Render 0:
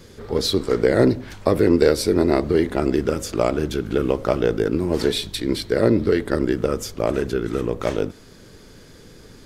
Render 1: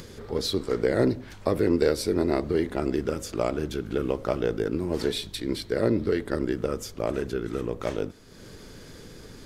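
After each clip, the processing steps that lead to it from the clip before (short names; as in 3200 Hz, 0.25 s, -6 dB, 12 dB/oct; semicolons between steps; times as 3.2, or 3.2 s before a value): upward compressor, threshold -29 dBFS; gain -6.5 dB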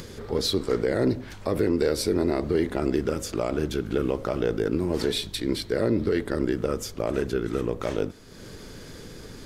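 limiter -16 dBFS, peak gain reduction 6.5 dB; gain +3 dB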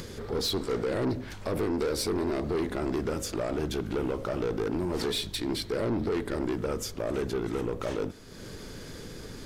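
soft clip -24 dBFS, distortion -9 dB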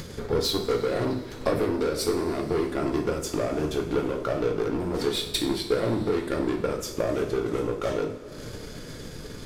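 transient shaper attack +9 dB, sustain -9 dB; two-slope reverb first 0.48 s, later 4.2 s, from -18 dB, DRR 1.5 dB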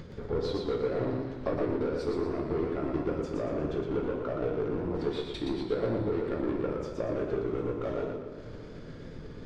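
tape spacing loss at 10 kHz 28 dB; warbling echo 0.118 s, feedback 42%, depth 91 cents, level -4 dB; gain -5 dB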